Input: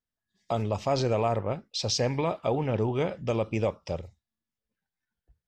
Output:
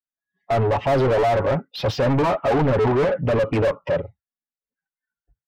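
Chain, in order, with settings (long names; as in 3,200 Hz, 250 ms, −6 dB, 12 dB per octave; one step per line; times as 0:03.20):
spectral dynamics exaggerated over time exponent 1.5
low-pass filter 1,600 Hz 12 dB per octave
comb filter 7.2 ms, depth 98%
mid-hump overdrive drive 37 dB, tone 1,100 Hz, clips at −11 dBFS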